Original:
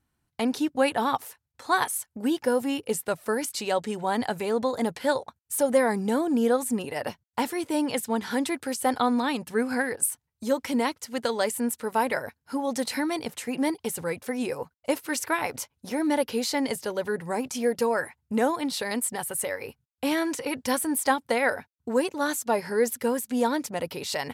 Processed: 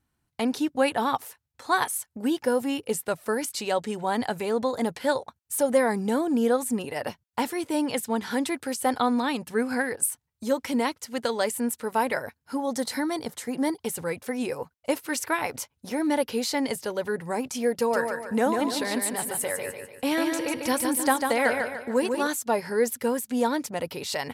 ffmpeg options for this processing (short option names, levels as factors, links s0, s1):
-filter_complex "[0:a]asettb=1/sr,asplit=3[s0][s1][s2];[s0]atrim=end=12.604[s3];[s1]atrim=start=12.6:end=13.84,asetpts=PTS-STARTPTS,afade=t=in:d=0.004:c=qsin,afade=t=out:st=1.236:d=0.004:c=qsin,equalizer=f=2600:w=4:g=-10[s4];[s2]atrim=start=13.836[s5];[s3][s4]acrossfade=d=0.004:c1=hsin:c2=qsin[s6];[s6][s5]acrossfade=d=0.004:c1=qsin:c2=hsin,asettb=1/sr,asplit=3[s7][s8][s9];[s7]atrim=end=17.764[s10];[s8]atrim=start=17.76:end=22.27,asetpts=PTS-STARTPTS,afade=t=in:d=0.004:c=qsin,afade=t=out:st=4.506:d=0.004:c=qsin,aecho=1:1:147|294|441|588|735:0.562|0.236|0.0992|0.0417|0.0175,atrim=end_sample=198891[s11];[s9]atrim=start=22.266[s12];[s10][s11]acrossfade=d=0.004:c1=hsin:c2=qsin[s13];[s13][s12]acrossfade=d=0.004:c1=qsin:c2=hsin"